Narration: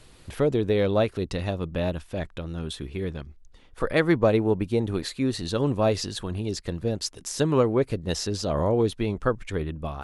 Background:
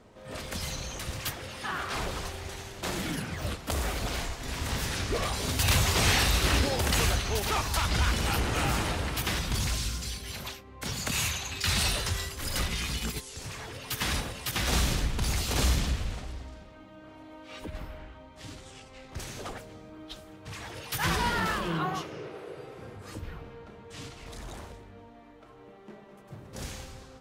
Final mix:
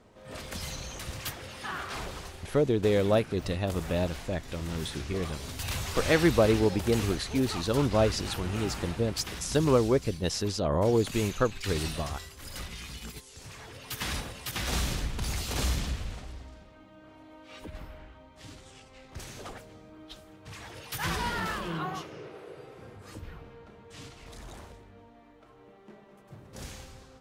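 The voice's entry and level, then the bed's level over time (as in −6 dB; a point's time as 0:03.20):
2.15 s, −2.0 dB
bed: 0:01.75 −2.5 dB
0:02.67 −9.5 dB
0:12.95 −9.5 dB
0:13.97 −3.5 dB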